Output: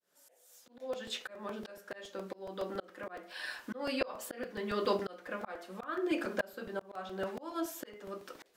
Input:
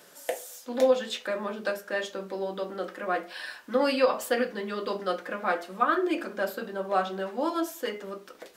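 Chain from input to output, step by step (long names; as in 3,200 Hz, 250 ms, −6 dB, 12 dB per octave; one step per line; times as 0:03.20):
fade in at the beginning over 1.48 s
volume swells 559 ms
regular buffer underruns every 0.14 s, samples 128, repeat, from 0:00.93
level +1 dB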